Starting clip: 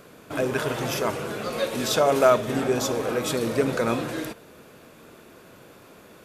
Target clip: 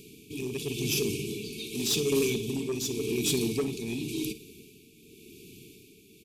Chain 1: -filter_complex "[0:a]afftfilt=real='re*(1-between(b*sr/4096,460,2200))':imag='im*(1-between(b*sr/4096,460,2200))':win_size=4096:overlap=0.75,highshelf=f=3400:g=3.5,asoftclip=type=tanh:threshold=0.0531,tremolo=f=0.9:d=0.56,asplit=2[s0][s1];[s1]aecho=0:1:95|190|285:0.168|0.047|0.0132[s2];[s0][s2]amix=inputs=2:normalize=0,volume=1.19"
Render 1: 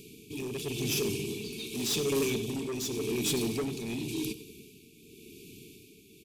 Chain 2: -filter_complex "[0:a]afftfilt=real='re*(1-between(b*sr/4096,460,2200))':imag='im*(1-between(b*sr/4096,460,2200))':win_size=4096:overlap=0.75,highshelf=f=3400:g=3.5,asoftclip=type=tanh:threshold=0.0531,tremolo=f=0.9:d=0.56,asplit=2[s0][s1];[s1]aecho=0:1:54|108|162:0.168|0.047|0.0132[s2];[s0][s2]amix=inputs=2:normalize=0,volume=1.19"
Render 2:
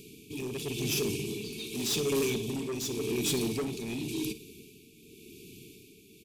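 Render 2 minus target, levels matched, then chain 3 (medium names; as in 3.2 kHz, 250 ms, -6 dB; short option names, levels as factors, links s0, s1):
saturation: distortion +6 dB
-filter_complex "[0:a]afftfilt=real='re*(1-between(b*sr/4096,460,2200))':imag='im*(1-between(b*sr/4096,460,2200))':win_size=4096:overlap=0.75,highshelf=f=3400:g=3.5,asoftclip=type=tanh:threshold=0.106,tremolo=f=0.9:d=0.56,asplit=2[s0][s1];[s1]aecho=0:1:54|108|162:0.168|0.047|0.0132[s2];[s0][s2]amix=inputs=2:normalize=0,volume=1.19"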